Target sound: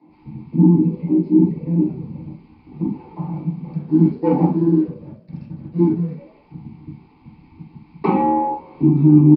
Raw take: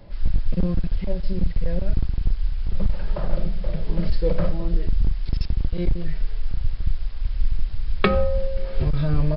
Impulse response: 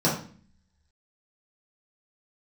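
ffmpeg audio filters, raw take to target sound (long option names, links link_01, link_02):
-filter_complex "[0:a]afwtdn=0.112,asplit=2[link_01][link_02];[link_02]highpass=frequency=720:poles=1,volume=26dB,asoftclip=type=tanh:threshold=-5.5dB[link_03];[link_01][link_03]amix=inputs=2:normalize=0,lowpass=frequency=3300:poles=1,volume=-6dB,asplit=3[link_04][link_05][link_06];[link_04]bandpass=frequency=300:width_type=q:width=8,volume=0dB[link_07];[link_05]bandpass=frequency=870:width_type=q:width=8,volume=-6dB[link_08];[link_06]bandpass=frequency=2240:width_type=q:width=8,volume=-9dB[link_09];[link_07][link_08][link_09]amix=inputs=3:normalize=0,asettb=1/sr,asplit=3[link_10][link_11][link_12];[link_10]atrim=end=3.724[link_13];[link_11]atrim=start=3.72:end=6.17,asetpts=PTS-STARTPTS,afade=type=in:duration=0.004:curve=qsin,afade=type=out:start_time=2.446:duration=0.004:curve=qsin,aeval=exprs='sgn(val(0))*max(abs(val(0))-0.00141,0)':channel_layout=same[link_14];[link_12]atrim=start=6.166[link_15];[link_13][link_14]acrossfade=duration=0.004:curve1=hsin:curve2=qsin[link_16];[link_16][link_15]acrossfade=duration=0.004:curve1=qsin:curve2=hsin,asplit=5[link_17][link_18][link_19][link_20][link_21];[link_18]adelay=119,afreqshift=73,volume=-20dB[link_22];[link_19]adelay=238,afreqshift=146,volume=-26.4dB[link_23];[link_20]adelay=357,afreqshift=219,volume=-32.8dB[link_24];[link_21]adelay=476,afreqshift=292,volume=-39.1dB[link_25];[link_17][link_22][link_23][link_24][link_25]amix=inputs=5:normalize=0[link_26];[1:a]atrim=start_sample=2205,atrim=end_sample=3528[link_27];[link_26][link_27]afir=irnorm=-1:irlink=0,aresample=11025,aresample=44100,volume=-3dB"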